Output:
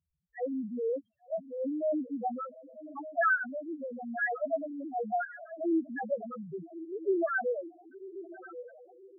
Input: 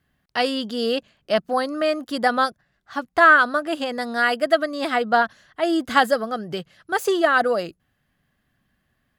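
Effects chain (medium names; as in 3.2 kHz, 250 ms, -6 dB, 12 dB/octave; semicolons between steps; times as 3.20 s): 1.44–2.11 s: transient shaper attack -8 dB, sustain +6 dB; echo that smears into a reverb 1128 ms, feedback 44%, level -11 dB; rotary cabinet horn 0.9 Hz; loudest bins only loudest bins 1; trim -1.5 dB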